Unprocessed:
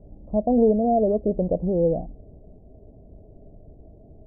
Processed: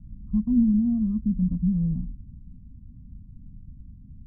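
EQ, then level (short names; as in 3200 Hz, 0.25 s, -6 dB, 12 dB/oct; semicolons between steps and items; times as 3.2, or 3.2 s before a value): inverse Chebyshev band-stop 350–800 Hz, stop band 40 dB; air absorption 360 m; +4.0 dB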